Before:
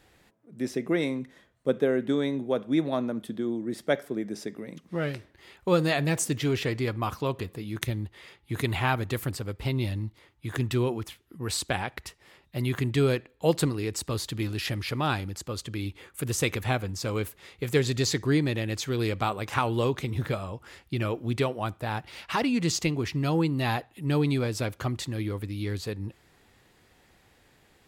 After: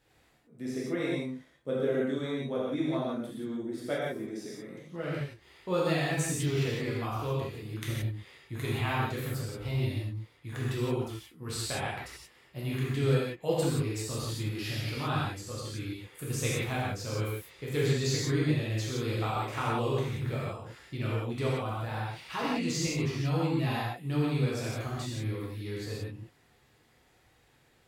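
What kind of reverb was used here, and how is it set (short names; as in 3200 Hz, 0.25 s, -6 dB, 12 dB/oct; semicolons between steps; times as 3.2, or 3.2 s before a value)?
non-linear reverb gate 0.2 s flat, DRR -7 dB; gain -11.5 dB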